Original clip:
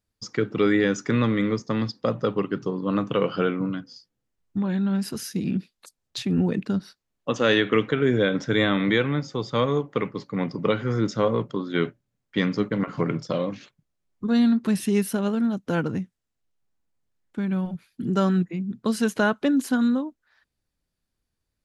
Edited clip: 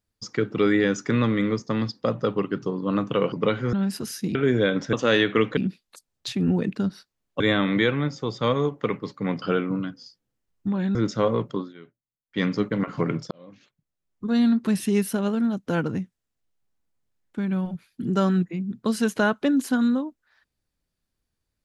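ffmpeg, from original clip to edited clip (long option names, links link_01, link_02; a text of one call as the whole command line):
ffmpeg -i in.wav -filter_complex "[0:a]asplit=12[link_01][link_02][link_03][link_04][link_05][link_06][link_07][link_08][link_09][link_10][link_11][link_12];[link_01]atrim=end=3.322[link_13];[link_02]atrim=start=10.538:end=10.952[link_14];[link_03]atrim=start=4.848:end=5.472[link_15];[link_04]atrim=start=7.938:end=8.522[link_16];[link_05]atrim=start=7.298:end=7.942[link_17];[link_06]atrim=start=5.468:end=7.302[link_18];[link_07]atrim=start=8.518:end=10.542[link_19];[link_08]atrim=start=3.318:end=4.852[link_20];[link_09]atrim=start=10.948:end=11.74,asetpts=PTS-STARTPTS,afade=type=out:start_time=0.642:duration=0.15:silence=0.0749894[link_21];[link_10]atrim=start=11.74:end=12.28,asetpts=PTS-STARTPTS,volume=-22.5dB[link_22];[link_11]atrim=start=12.28:end=13.31,asetpts=PTS-STARTPTS,afade=type=in:duration=0.15:silence=0.0749894,afade=type=out:start_time=1.026:duration=0.004:curve=hsin[link_23];[link_12]atrim=start=13.31,asetpts=PTS-STARTPTS,afade=type=in:duration=1.2[link_24];[link_13][link_14]acrossfade=duration=0.004:curve1=hsin:curve2=hsin[link_25];[link_25][link_15]acrossfade=duration=0.004:curve1=hsin:curve2=hsin[link_26];[link_26][link_16]acrossfade=duration=0.004:curve1=hsin:curve2=hsin[link_27];[link_27][link_17]acrossfade=duration=0.004:curve1=hsin:curve2=hsin[link_28];[link_28][link_18]acrossfade=duration=0.004:curve1=hsin:curve2=hsin[link_29];[link_29][link_19]acrossfade=duration=0.004:curve1=hsin:curve2=hsin[link_30];[link_30][link_20]acrossfade=duration=0.004:curve1=hsin:curve2=hsin[link_31];[link_21][link_22][link_23][link_24]concat=n=4:v=0:a=1[link_32];[link_31][link_32]acrossfade=duration=0.004:curve1=hsin:curve2=hsin" out.wav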